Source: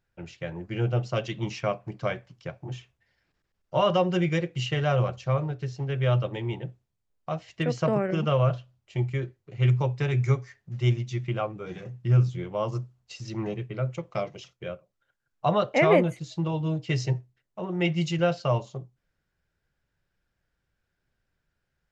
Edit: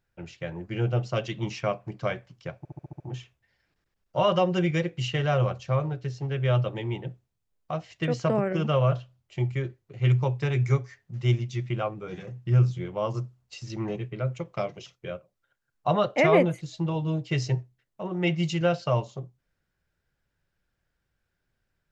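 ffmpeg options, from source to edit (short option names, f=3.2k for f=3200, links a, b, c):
-filter_complex "[0:a]asplit=7[a][b][c][d][e][f][g];[a]atrim=end=2.652[h];[b]atrim=start=2.578:end=2.652[i];[c]atrim=start=2.578:end=2.652[j];[d]atrim=start=2.578:end=2.652[k];[e]atrim=start=2.578:end=2.652[l];[f]atrim=start=2.578:end=2.652[m];[g]atrim=start=2.578[n];[h][i]acrossfade=d=0.004:c1=hsin:c2=hsin[o];[o][j]acrossfade=d=0.004:c1=hsin:c2=hsin[p];[p][k]acrossfade=d=0.004:c1=hsin:c2=hsin[q];[q][l]acrossfade=d=0.004:c1=hsin:c2=hsin[r];[r][m]acrossfade=d=0.004:c1=hsin:c2=hsin[s];[s][n]acrossfade=d=0.004:c1=hsin:c2=hsin"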